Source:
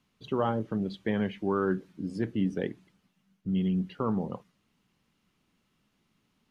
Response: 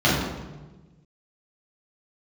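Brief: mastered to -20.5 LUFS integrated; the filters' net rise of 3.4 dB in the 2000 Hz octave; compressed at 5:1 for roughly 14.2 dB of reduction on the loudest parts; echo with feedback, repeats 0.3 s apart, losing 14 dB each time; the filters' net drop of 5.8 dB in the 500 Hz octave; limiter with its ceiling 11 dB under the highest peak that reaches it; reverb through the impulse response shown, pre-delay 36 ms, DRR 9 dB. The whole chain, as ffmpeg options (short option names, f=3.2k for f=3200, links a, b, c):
-filter_complex "[0:a]equalizer=f=500:t=o:g=-8,equalizer=f=2k:t=o:g=5,acompressor=threshold=-42dB:ratio=5,alimiter=level_in=14dB:limit=-24dB:level=0:latency=1,volume=-14dB,aecho=1:1:300|600:0.2|0.0399,asplit=2[a][b];[1:a]atrim=start_sample=2205,adelay=36[c];[b][c]afir=irnorm=-1:irlink=0,volume=-29dB[d];[a][d]amix=inputs=2:normalize=0,volume=25.5dB"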